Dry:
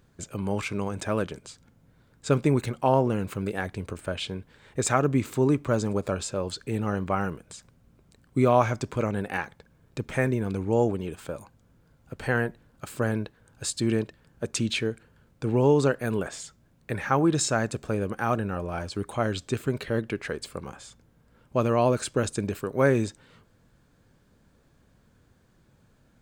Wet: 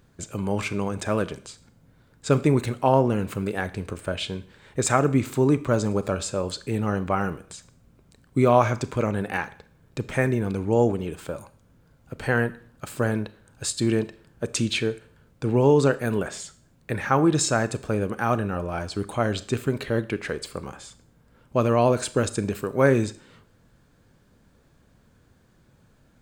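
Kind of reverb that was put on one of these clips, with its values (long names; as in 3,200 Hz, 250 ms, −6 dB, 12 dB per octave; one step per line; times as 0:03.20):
four-comb reverb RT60 0.5 s, combs from 26 ms, DRR 14.5 dB
level +2.5 dB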